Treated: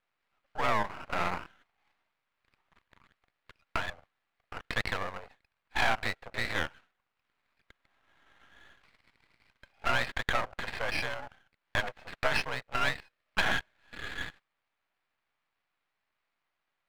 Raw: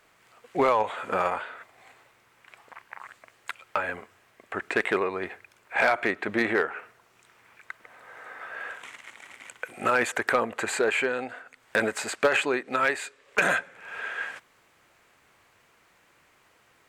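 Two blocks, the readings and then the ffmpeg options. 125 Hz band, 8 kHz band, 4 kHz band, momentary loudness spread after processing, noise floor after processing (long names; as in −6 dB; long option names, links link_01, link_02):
+3.0 dB, −10.0 dB, +1.0 dB, 12 LU, −84 dBFS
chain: -af "afwtdn=0.0282,highpass=frequency=570:width_type=q:width=0.5412,highpass=frequency=570:width_type=q:width=1.307,lowpass=frequency=3000:width_type=q:width=0.5176,lowpass=frequency=3000:width_type=q:width=0.7071,lowpass=frequency=3000:width_type=q:width=1.932,afreqshift=66,aeval=exprs='max(val(0),0)':channel_layout=same"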